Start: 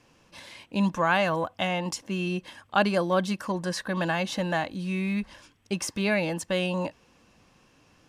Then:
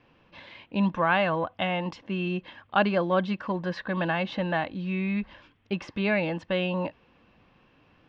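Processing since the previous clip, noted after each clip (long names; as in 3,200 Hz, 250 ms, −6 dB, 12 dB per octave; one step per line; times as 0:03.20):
low-pass filter 3,500 Hz 24 dB per octave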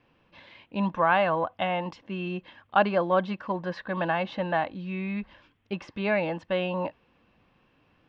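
dynamic equaliser 820 Hz, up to +7 dB, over −37 dBFS, Q 0.7
level −4 dB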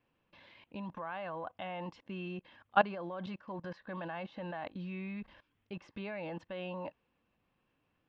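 output level in coarse steps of 19 dB
level −2.5 dB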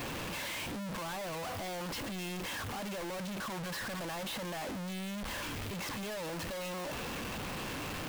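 sign of each sample alone
level +2 dB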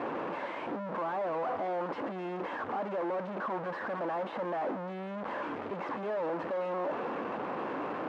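flat-topped band-pass 610 Hz, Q 0.62
level +8 dB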